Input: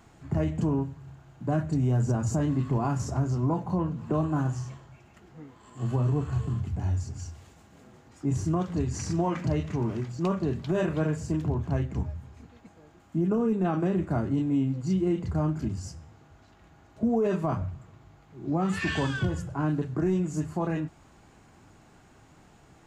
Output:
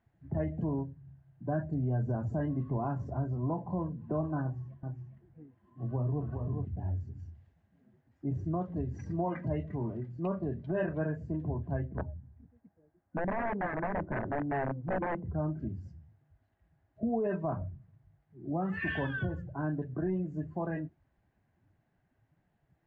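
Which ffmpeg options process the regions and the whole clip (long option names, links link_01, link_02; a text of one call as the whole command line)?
ffmpeg -i in.wav -filter_complex "[0:a]asettb=1/sr,asplit=3[link_01][link_02][link_03];[link_01]atrim=end=4.424[link_04];[link_02]atrim=start=4.42:end=6.65,asetpts=PTS-STARTPTS,afade=type=in:duration=0.004:curve=qsin,afade=type=out:start_time=2.226:duration=0.004:curve=qsin,highshelf=frequency=3000:gain=-7,aecho=1:1:409:0.596,atrim=end_sample=98343[link_05];[link_03]atrim=start=6.646[link_06];[link_04][link_05]acrossfade=duration=0.004:curve1=hsin:curve2=qsin[link_07];[link_07][link_06]acrossfade=duration=0.004:curve1=qsin:curve2=hsin,asettb=1/sr,asplit=3[link_08][link_09][link_10];[link_08]atrim=end=11.894[link_11];[link_09]atrim=start=11.89:end=15.34,asetpts=PTS-STARTPTS,afade=type=in:duration=0.004:curve=qsin,afade=type=out:start_time=3.446:duration=0.004:curve=qsin,aeval=exprs='(mod(11.2*val(0)+1,2)-1)/11.2':channel_layout=same,lowpass=1600[link_12];[link_10]atrim=start=15.336[link_13];[link_11][link_12]acrossfade=duration=0.004:curve1=hsin:curve2=qsin[link_14];[link_14][link_13]acrossfade=duration=0.004:curve1=qsin:curve2=hsin,lowpass=3100,afftdn=noise_reduction=16:noise_floor=-41,superequalizer=8b=1.58:10b=0.708:11b=1.78,volume=-6.5dB" out.wav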